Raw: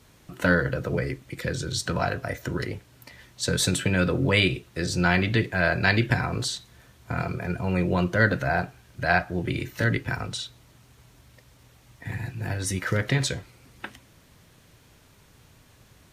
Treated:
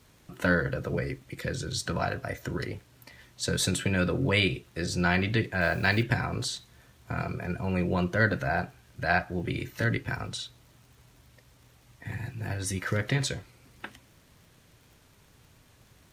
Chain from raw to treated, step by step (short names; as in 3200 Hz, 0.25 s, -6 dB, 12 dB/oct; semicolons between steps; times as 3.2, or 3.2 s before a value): 5.61–6.03 level-crossing sampler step -42 dBFS; crackle 55/s -46 dBFS; gain -3.5 dB